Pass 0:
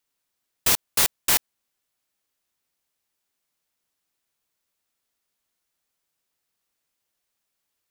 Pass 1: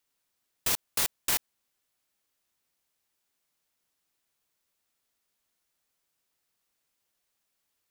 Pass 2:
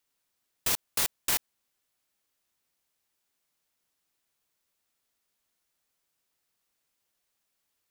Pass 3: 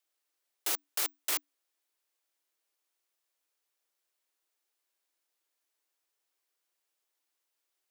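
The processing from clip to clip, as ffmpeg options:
ffmpeg -i in.wav -af "alimiter=limit=-16dB:level=0:latency=1:release=38" out.wav
ffmpeg -i in.wav -af anull out.wav
ffmpeg -i in.wav -af "afreqshift=290,volume=-4dB" out.wav

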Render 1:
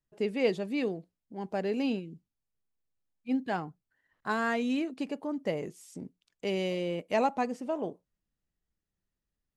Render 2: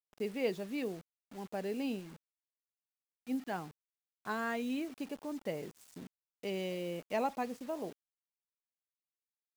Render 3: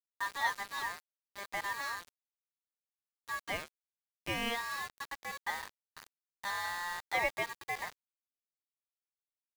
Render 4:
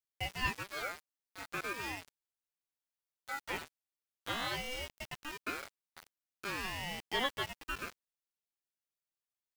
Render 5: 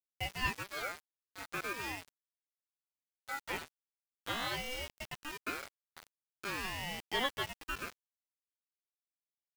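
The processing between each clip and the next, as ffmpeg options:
ffmpeg -i in.wav -af "acrusher=bits=7:mix=0:aa=0.000001,volume=-6.5dB" out.wav
ffmpeg -i in.wav -af "equalizer=frequency=260:width_type=o:width=0.89:gain=-5.5,aeval=exprs='val(0)*sin(2*PI*1400*n/s)':channel_layout=same,aeval=exprs='val(0)*gte(abs(val(0)),0.00562)':channel_layout=same,volume=5dB" out.wav
ffmpeg -i in.wav -af "aeval=exprs='val(0)*sin(2*PI*700*n/s+700*0.65/0.42*sin(2*PI*0.42*n/s))':channel_layout=same,volume=1dB" out.wav
ffmpeg -i in.wav -af "acrusher=bits=7:mix=0:aa=0.000001" out.wav

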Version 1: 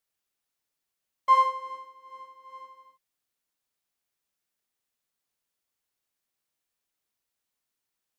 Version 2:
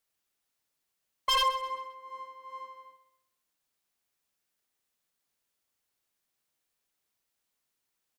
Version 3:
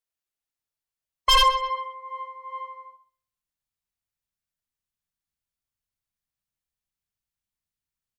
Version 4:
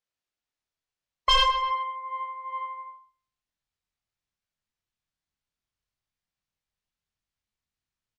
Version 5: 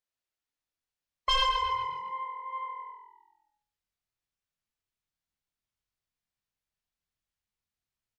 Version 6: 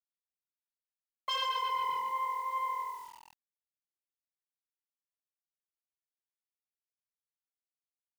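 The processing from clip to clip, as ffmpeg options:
ffmpeg -i in.wav -af "aeval=exprs='0.0794*(abs(mod(val(0)/0.0794+3,4)-2)-1)':channel_layout=same,aecho=1:1:130|260|390|520:0.2|0.0738|0.0273|0.0101,volume=2dB" out.wav
ffmpeg -i in.wav -af "afftdn=noise_reduction=18:noise_floor=-50,asubboost=boost=7.5:cutoff=140,volume=8.5dB" out.wav
ffmpeg -i in.wav -filter_complex "[0:a]lowpass=5800,asplit=2[link_01][link_02];[link_02]adelay=24,volume=-5dB[link_03];[link_01][link_03]amix=inputs=2:normalize=0,acompressor=threshold=-28dB:ratio=1.5,volume=1.5dB" out.wav
ffmpeg -i in.wav -filter_complex "[0:a]asplit=2[link_01][link_02];[link_02]alimiter=limit=-20dB:level=0:latency=1,volume=-3dB[link_03];[link_01][link_03]amix=inputs=2:normalize=0,asplit=6[link_04][link_05][link_06][link_07][link_08][link_09];[link_05]adelay=133,afreqshift=-42,volume=-9.5dB[link_10];[link_06]adelay=266,afreqshift=-84,volume=-16.4dB[link_11];[link_07]adelay=399,afreqshift=-126,volume=-23.4dB[link_12];[link_08]adelay=532,afreqshift=-168,volume=-30.3dB[link_13];[link_09]adelay=665,afreqshift=-210,volume=-37.2dB[link_14];[link_04][link_10][link_11][link_12][link_13][link_14]amix=inputs=6:normalize=0,volume=-8dB" out.wav
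ffmpeg -i in.wav -af "highpass=270,areverse,acompressor=threshold=-35dB:ratio=10,areverse,acrusher=bits=9:mix=0:aa=0.000001,volume=5dB" out.wav

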